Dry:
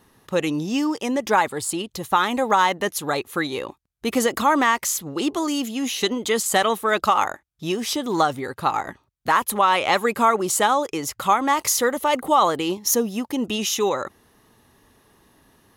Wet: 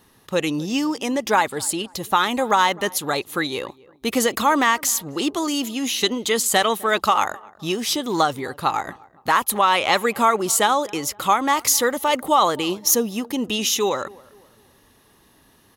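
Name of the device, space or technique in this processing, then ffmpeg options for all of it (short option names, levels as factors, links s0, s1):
presence and air boost: -filter_complex "[0:a]equalizer=f=3800:t=o:w=1.4:g=3.5,highshelf=f=9800:g=5.5,asplit=2[s0][s1];[s1]adelay=257,lowpass=f=1300:p=1,volume=0.0794,asplit=2[s2][s3];[s3]adelay=257,lowpass=f=1300:p=1,volume=0.42,asplit=2[s4][s5];[s5]adelay=257,lowpass=f=1300:p=1,volume=0.42[s6];[s0][s2][s4][s6]amix=inputs=4:normalize=0"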